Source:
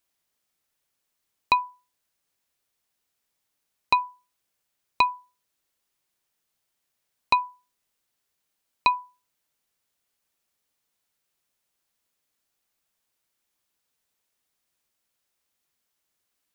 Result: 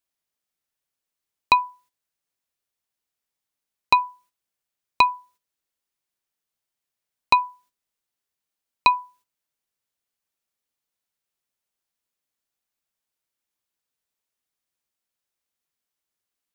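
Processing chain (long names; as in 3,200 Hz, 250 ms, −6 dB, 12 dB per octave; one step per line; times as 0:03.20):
noise gate −58 dBFS, range −11 dB
level +4 dB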